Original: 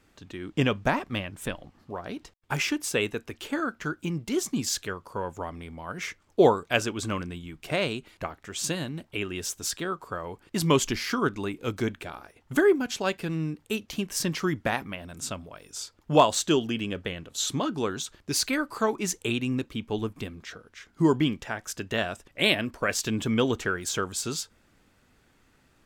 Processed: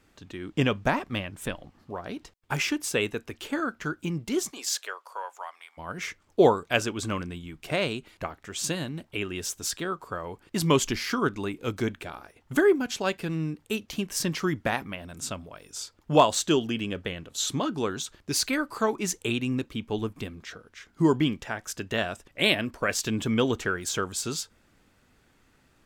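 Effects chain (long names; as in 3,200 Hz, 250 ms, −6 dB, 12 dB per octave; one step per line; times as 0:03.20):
0:04.50–0:05.77: high-pass filter 430 Hz → 950 Hz 24 dB per octave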